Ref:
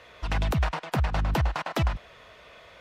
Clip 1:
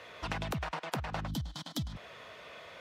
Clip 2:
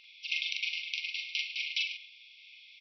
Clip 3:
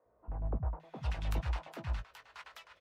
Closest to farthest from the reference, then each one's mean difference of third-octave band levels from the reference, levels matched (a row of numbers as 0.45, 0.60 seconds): 1, 3, 2; 6.0, 8.0, 23.0 decibels